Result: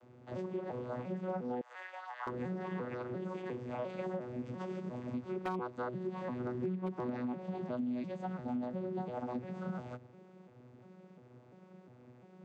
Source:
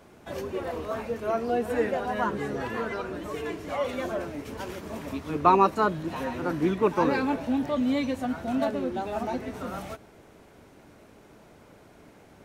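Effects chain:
vocoder with an arpeggio as carrier bare fifth, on B2, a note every 349 ms
0:01.61–0:02.27: inverse Chebyshev high-pass filter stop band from 160 Hz, stop band 80 dB
downward compressor 6 to 1, threshold −31 dBFS, peak gain reduction 14 dB
wave folding −24.5 dBFS
level −3.5 dB

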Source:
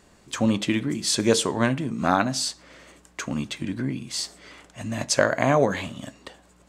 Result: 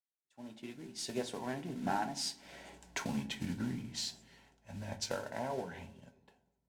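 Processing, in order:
fade in at the beginning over 1.69 s
source passing by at 0:02.84, 29 m/s, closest 12 metres
parametric band 810 Hz +8.5 dB 0.55 octaves
downward compressor 4 to 1, threshold −39 dBFS, peak gain reduction 16.5 dB
noise that follows the level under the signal 10 dB
Butterworth band-reject 1,200 Hz, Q 4.8
high-frequency loss of the air 52 metres
delay with a low-pass on its return 197 ms, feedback 57%, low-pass 400 Hz, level −12 dB
on a send at −7 dB: convolution reverb RT60 0.40 s, pre-delay 4 ms
on the sum: multiband upward and downward expander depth 70%
level +2 dB

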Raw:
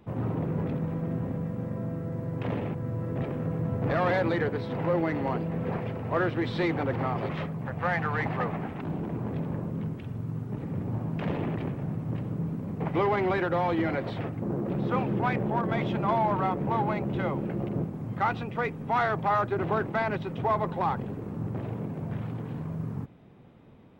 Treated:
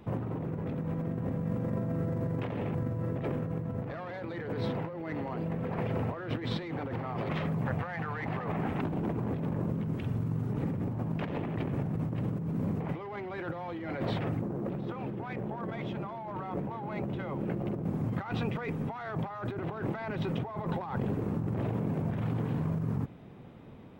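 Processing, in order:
compressor whose output falls as the input rises −34 dBFS, ratio −1

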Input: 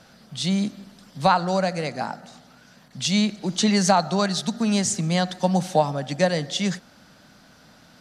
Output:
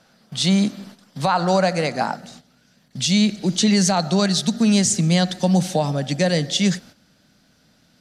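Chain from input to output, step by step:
noise gate −46 dBFS, range −11 dB
parametric band 62 Hz −8 dB 1.5 octaves, from 0:02.17 1,000 Hz
brickwall limiter −15.5 dBFS, peak gain reduction 11 dB
level +6.5 dB

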